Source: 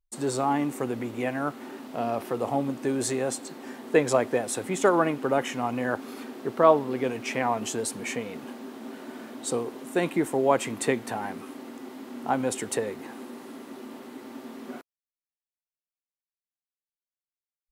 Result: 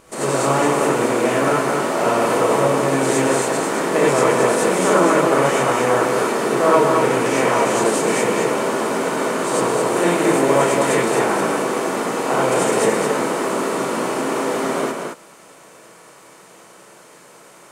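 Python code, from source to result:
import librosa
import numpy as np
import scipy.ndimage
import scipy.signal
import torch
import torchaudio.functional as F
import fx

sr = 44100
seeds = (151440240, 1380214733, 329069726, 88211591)

y = fx.bin_compress(x, sr, power=0.4)
y = y + 10.0 ** (-4.5 / 20.0) * np.pad(y, (int(220 * sr / 1000.0), 0))[:len(y)]
y = fx.rev_gated(y, sr, seeds[0], gate_ms=120, shape='rising', drr_db=-6.5)
y = y * 10.0 ** (-5.5 / 20.0)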